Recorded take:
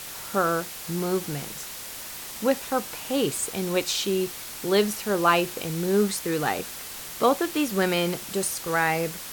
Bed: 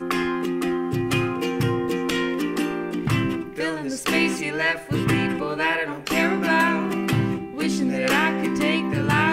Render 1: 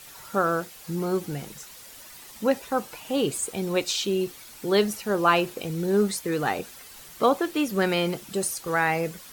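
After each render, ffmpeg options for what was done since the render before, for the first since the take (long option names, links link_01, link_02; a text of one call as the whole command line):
ffmpeg -i in.wav -af "afftdn=noise_reduction=10:noise_floor=-38" out.wav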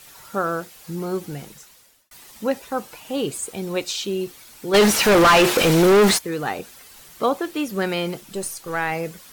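ffmpeg -i in.wav -filter_complex "[0:a]asplit=3[link_01][link_02][link_03];[link_01]afade=type=out:start_time=4.73:duration=0.02[link_04];[link_02]asplit=2[link_05][link_06];[link_06]highpass=frequency=720:poles=1,volume=36dB,asoftclip=type=tanh:threshold=-6.5dB[link_07];[link_05][link_07]amix=inputs=2:normalize=0,lowpass=frequency=3700:poles=1,volume=-6dB,afade=type=in:start_time=4.73:duration=0.02,afade=type=out:start_time=6.17:duration=0.02[link_08];[link_03]afade=type=in:start_time=6.17:duration=0.02[link_09];[link_04][link_08][link_09]amix=inputs=3:normalize=0,asettb=1/sr,asplit=3[link_10][link_11][link_12];[link_10]atrim=end=8.214[link_13];[link_11]atrim=start=8.21:end=8.92,asetpts=PTS-STARTPTS,afade=type=in:duration=0.004:curve=qsin,afade=type=out:start_time=0.706:duration=0.004:curve=qsin,aeval=exprs='if(lt(val(0),0),0.708*val(0),val(0))':channel_layout=same[link_14];[link_12]atrim=start=8.916[link_15];[link_13][link_14]acrossfade=duration=0.004:curve1=hsin:curve2=qsin[link_16];[link_16][link_15]acrossfade=duration=0.004:curve1=qsin:curve2=hsin,asplit=2[link_17][link_18];[link_17]atrim=end=2.11,asetpts=PTS-STARTPTS,afade=type=out:start_time=1.41:duration=0.7[link_19];[link_18]atrim=start=2.11,asetpts=PTS-STARTPTS,afade=type=in:duration=0.004:curve=hsin[link_20];[link_19][link_20]concat=n=2:v=0:a=1" out.wav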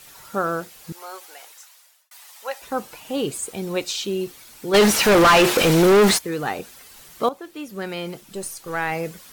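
ffmpeg -i in.wav -filter_complex "[0:a]asettb=1/sr,asplit=3[link_01][link_02][link_03];[link_01]atrim=end=0.924[link_04];[link_02]atrim=start=0.92:end=2.62,asetpts=PTS-STARTPTS,afade=type=in:duration=0.004:curve=qsin,afade=type=out:start_time=1.696:duration=0.004:curve=qsin,highpass=frequency=660:width=0.5412,highpass=frequency=660:width=1.3066[link_05];[link_03]atrim=start=2.616[link_06];[link_04][link_05]acrossfade=duration=0.004:curve1=hsin:curve2=qsin[link_07];[link_07][link_06]acrossfade=duration=0.004:curve1=qsin:curve2=hsin,asplit=2[link_08][link_09];[link_08]atrim=end=7.29,asetpts=PTS-STARTPTS,afade=type=out:start_time=7.286:duration=0.004:curve=hsin:silence=0.223872[link_10];[link_09]atrim=start=7.29,asetpts=PTS-STARTPTS,afade=type=in:duration=1.73:silence=0.223872[link_11];[link_10][link_11]concat=n=2:v=0:a=1" out.wav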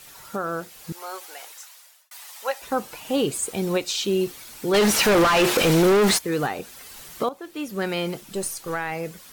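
ffmpeg -i in.wav -af "alimiter=limit=-17dB:level=0:latency=1:release=405,dynaudnorm=framelen=320:gausssize=7:maxgain=3.5dB" out.wav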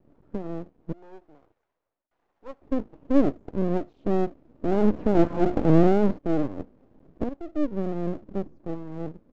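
ffmpeg -i in.wav -af "lowpass=frequency=290:width_type=q:width=3.6,aresample=16000,aeval=exprs='max(val(0),0)':channel_layout=same,aresample=44100" out.wav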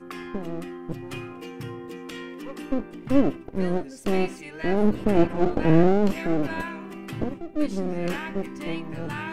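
ffmpeg -i in.wav -i bed.wav -filter_complex "[1:a]volume=-13.5dB[link_01];[0:a][link_01]amix=inputs=2:normalize=0" out.wav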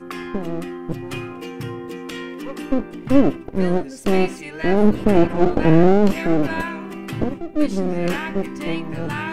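ffmpeg -i in.wav -af "volume=6dB,alimiter=limit=-2dB:level=0:latency=1" out.wav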